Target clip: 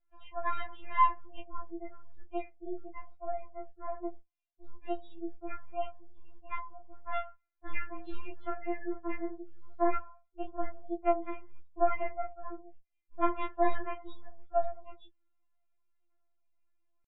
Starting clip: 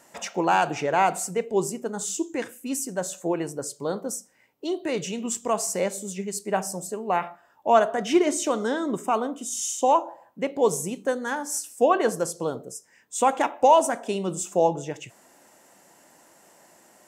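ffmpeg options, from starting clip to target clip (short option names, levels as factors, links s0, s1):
-af "aeval=exprs='if(lt(val(0),0),0.447*val(0),val(0))':c=same,flanger=delay=19.5:depth=4.4:speed=0.27,lowpass=f=2500:w=0.5412,lowpass=f=2500:w=1.3066,aemphasis=mode=reproduction:type=50kf,asetrate=58866,aresample=44100,atempo=0.749154,afftdn=nr=22:nf=-46,afftfilt=real='re*4*eq(mod(b,16),0)':imag='im*4*eq(mod(b,16),0)':win_size=2048:overlap=0.75,volume=0.596"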